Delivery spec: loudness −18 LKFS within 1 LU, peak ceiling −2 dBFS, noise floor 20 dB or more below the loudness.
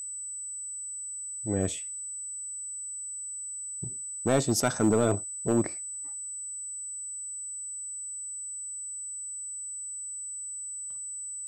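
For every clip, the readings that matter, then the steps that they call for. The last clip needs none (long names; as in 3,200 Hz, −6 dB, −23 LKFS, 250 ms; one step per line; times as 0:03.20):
share of clipped samples 0.3%; peaks flattened at −16.5 dBFS; interfering tone 8,000 Hz; level of the tone −35 dBFS; integrated loudness −31.5 LKFS; sample peak −16.5 dBFS; target loudness −18.0 LKFS
→ clipped peaks rebuilt −16.5 dBFS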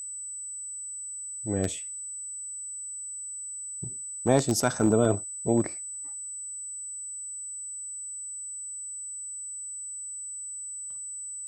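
share of clipped samples 0.0%; interfering tone 8,000 Hz; level of the tone −35 dBFS
→ notch filter 8,000 Hz, Q 30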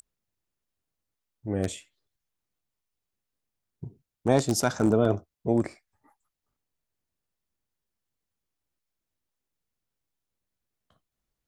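interfering tone none found; integrated loudness −26.5 LKFS; sample peak −7.5 dBFS; target loudness −18.0 LKFS
→ level +8.5 dB
brickwall limiter −2 dBFS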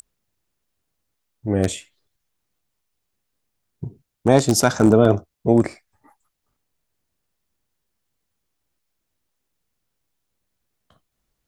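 integrated loudness −18.5 LKFS; sample peak −2.0 dBFS; background noise floor −78 dBFS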